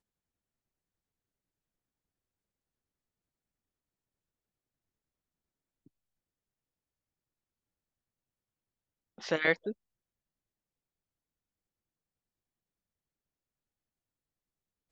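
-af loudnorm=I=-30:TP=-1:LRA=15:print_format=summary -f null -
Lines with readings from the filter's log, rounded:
Input Integrated:    -31.1 LUFS
Input True Peak:     -12.4 dBTP
Input LRA:             0.0 LU
Input Threshold:     -42.6 LUFS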